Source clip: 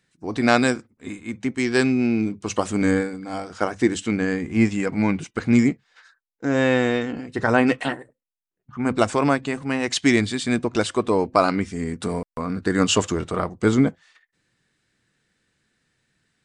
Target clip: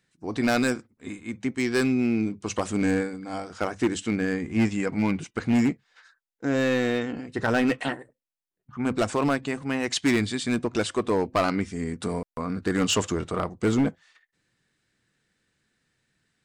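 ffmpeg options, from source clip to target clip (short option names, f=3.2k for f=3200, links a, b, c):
-af "asoftclip=type=hard:threshold=-13.5dB,volume=-3dB"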